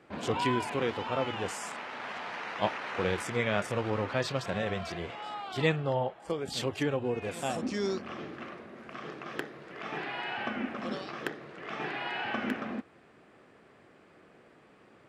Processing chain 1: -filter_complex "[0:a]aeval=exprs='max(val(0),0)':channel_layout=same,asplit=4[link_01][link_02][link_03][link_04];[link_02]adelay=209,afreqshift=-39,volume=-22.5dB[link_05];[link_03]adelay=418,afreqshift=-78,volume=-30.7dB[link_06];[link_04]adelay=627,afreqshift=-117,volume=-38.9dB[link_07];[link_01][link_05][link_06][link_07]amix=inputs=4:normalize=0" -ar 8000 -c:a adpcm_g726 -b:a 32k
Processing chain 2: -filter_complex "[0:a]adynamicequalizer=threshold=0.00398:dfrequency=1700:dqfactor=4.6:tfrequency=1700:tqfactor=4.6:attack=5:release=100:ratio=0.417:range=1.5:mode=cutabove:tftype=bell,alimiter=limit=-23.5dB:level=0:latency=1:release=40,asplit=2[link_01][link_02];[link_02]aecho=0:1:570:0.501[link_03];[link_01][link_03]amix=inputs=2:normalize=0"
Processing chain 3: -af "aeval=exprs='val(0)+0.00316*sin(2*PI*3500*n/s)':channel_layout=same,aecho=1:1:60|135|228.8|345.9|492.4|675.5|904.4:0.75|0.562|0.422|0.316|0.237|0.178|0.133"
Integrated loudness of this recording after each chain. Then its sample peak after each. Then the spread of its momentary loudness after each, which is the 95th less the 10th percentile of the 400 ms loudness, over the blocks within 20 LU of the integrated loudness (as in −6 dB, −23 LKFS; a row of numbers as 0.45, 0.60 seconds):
−38.0, −35.5, −30.5 LKFS; −12.5, −20.5, −12.0 dBFS; 12, 8, 17 LU